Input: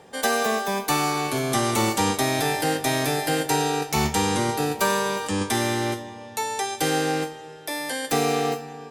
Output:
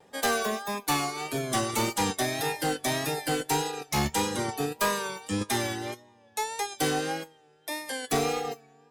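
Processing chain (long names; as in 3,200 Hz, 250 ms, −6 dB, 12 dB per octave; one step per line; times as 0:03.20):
pitch vibrato 1.7 Hz 61 cents
reverb reduction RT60 1.8 s
asymmetric clip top −23 dBFS, bottom −17.5 dBFS
expander for the loud parts 1.5 to 1, over −38 dBFS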